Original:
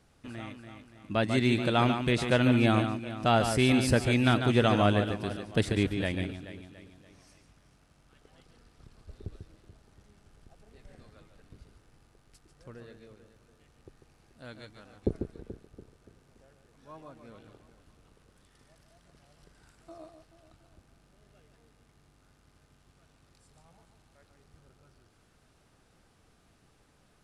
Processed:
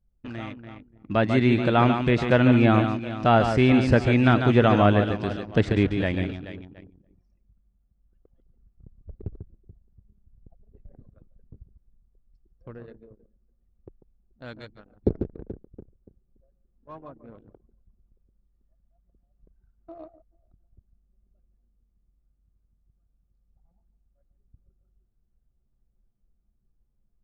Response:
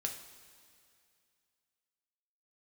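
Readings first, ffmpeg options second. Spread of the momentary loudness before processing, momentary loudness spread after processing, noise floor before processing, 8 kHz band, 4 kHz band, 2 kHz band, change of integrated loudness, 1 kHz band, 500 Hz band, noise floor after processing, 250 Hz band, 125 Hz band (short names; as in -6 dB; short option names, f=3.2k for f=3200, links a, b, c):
19 LU, 19 LU, -65 dBFS, under -10 dB, -1.0 dB, +4.0 dB, +5.5 dB, +6.0 dB, +6.0 dB, -70 dBFS, +6.0 dB, +6.0 dB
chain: -filter_complex "[0:a]lowpass=f=7k:w=0.5412,lowpass=f=7k:w=1.3066,acrossover=split=2600[a][b];[b]acompressor=threshold=-48dB:ratio=4:attack=1:release=60[c];[a][c]amix=inputs=2:normalize=0,anlmdn=0.0158,volume=6dB"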